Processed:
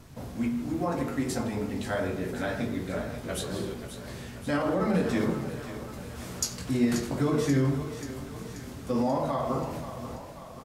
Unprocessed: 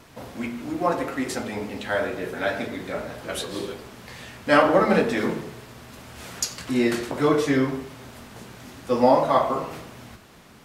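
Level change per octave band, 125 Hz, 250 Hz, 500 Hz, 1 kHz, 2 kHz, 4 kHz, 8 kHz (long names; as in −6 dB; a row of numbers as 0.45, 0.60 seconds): +3.0, −2.5, −7.5, −10.0, −9.0, −6.0, −2.0 decibels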